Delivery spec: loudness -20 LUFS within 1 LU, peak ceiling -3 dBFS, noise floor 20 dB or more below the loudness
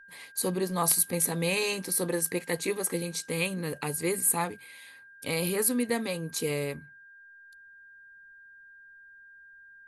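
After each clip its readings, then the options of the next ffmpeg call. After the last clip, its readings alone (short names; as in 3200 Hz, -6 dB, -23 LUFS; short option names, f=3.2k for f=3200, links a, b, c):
steady tone 1600 Hz; tone level -50 dBFS; loudness -28.5 LUFS; peak -9.5 dBFS; loudness target -20.0 LUFS
-> -af "bandreject=f=1.6k:w=30"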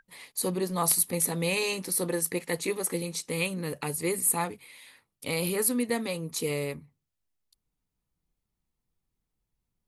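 steady tone none; loudness -28.5 LUFS; peak -9.5 dBFS; loudness target -20.0 LUFS
-> -af "volume=8.5dB,alimiter=limit=-3dB:level=0:latency=1"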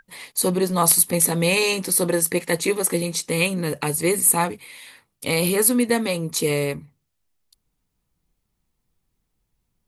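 loudness -20.0 LUFS; peak -3.0 dBFS; noise floor -76 dBFS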